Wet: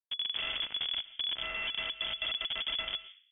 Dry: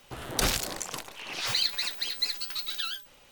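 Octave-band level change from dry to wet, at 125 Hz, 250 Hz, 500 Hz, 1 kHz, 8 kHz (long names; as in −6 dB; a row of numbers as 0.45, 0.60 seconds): −17.0 dB, −15.5 dB, −9.0 dB, −7.5 dB, below −40 dB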